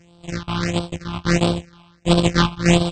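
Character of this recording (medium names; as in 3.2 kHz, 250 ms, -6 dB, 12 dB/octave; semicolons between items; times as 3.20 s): a buzz of ramps at a fixed pitch in blocks of 256 samples; phasing stages 6, 1.5 Hz, lowest notch 480–1900 Hz; AAC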